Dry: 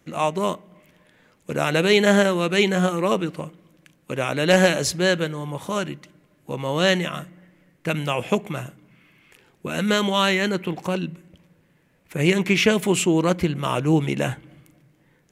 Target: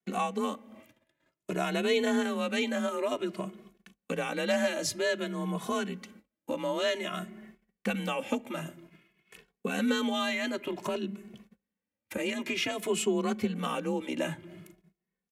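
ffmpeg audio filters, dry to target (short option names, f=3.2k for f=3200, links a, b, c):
-filter_complex "[0:a]acompressor=threshold=-33dB:ratio=2.5,agate=range=-30dB:threshold=-53dB:ratio=16:detection=peak,afreqshift=37,asplit=2[a][b];[b]adelay=2.3,afreqshift=0.53[c];[a][c]amix=inputs=2:normalize=1,volume=4dB"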